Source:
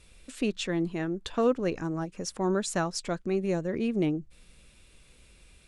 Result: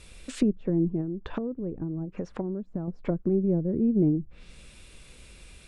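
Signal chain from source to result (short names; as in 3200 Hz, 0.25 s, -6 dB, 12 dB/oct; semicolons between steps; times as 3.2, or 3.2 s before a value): treble ducked by the level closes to 310 Hz, closed at -27.5 dBFS; 1–2.88 compressor 12:1, threshold -35 dBFS, peak gain reduction 11 dB; gain +7 dB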